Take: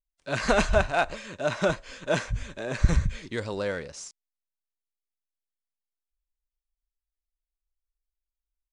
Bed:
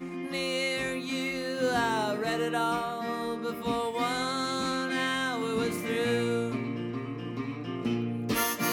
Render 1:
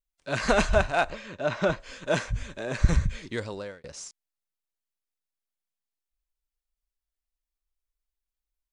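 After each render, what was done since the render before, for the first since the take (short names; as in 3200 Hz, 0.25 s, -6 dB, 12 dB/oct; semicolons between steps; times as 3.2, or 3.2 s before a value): 1.1–1.8 air absorption 98 m; 3.36–3.84 fade out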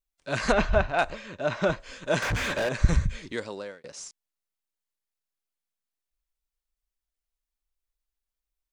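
0.52–0.99 air absorption 180 m; 2.22–2.69 overdrive pedal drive 37 dB, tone 2400 Hz, clips at -19.5 dBFS; 3.32–3.99 HPF 190 Hz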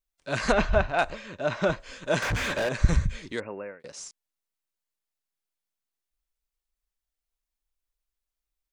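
3.4–3.8 brick-wall FIR low-pass 2800 Hz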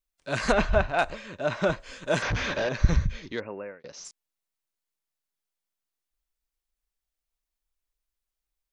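2.22–4.05 Chebyshev low-pass 6200 Hz, order 5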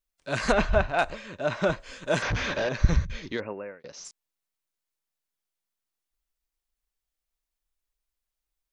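3.05–3.53 negative-ratio compressor -31 dBFS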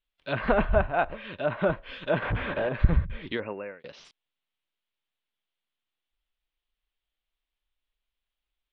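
resonant high shelf 4800 Hz -14 dB, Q 3; treble ducked by the level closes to 1400 Hz, closed at -24.5 dBFS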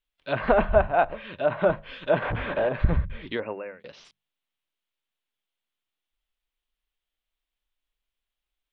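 notches 50/100/150/200 Hz; dynamic EQ 680 Hz, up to +5 dB, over -37 dBFS, Q 1.1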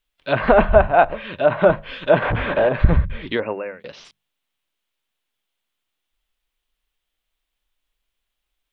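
gain +7.5 dB; limiter -1 dBFS, peak gain reduction 2 dB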